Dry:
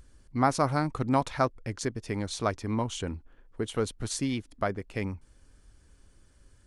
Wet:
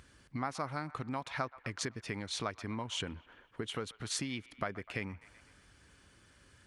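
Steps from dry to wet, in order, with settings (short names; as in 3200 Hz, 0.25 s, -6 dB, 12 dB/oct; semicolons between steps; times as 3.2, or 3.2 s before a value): tone controls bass +3 dB, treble -15 dB; band-limited delay 0.125 s, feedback 54%, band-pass 1400 Hz, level -21.5 dB; compressor 10:1, threshold -35 dBFS, peak gain reduction 17.5 dB; HPF 95 Hz 12 dB/oct; tilt shelf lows -8 dB, about 1300 Hz; gain +6.5 dB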